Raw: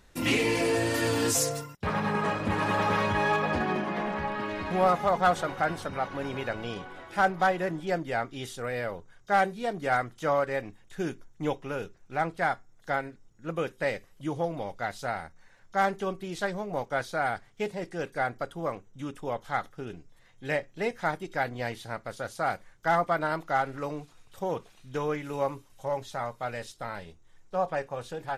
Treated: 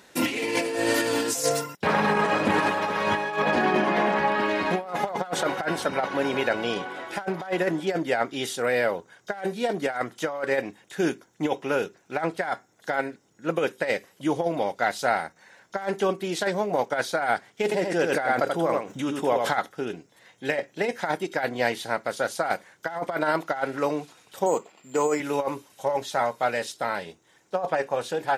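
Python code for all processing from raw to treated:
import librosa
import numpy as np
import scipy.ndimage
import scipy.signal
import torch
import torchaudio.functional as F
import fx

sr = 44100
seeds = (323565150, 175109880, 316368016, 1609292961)

y = fx.chain(x, sr, fx.echo_single(ms=84, db=-5.0),
    fx.pre_swell(db_per_s=68.0), at=(17.63, 19.55))
y = fx.chain(y, sr, fx.notch(hz=1600.0, q=5.1),
    fx.resample_bad(factor=6, down='filtered', up='zero_stuff'),
    fx.bandpass_edges(low_hz=180.0, high_hz=2200.0), at=(24.46, 25.2))
y = scipy.signal.sosfilt(scipy.signal.butter(2, 240.0, 'highpass', fs=sr, output='sos'), y)
y = fx.notch(y, sr, hz=1200.0, q=12.0)
y = fx.over_compress(y, sr, threshold_db=-30.0, ratio=-0.5)
y = F.gain(torch.from_numpy(y), 7.0).numpy()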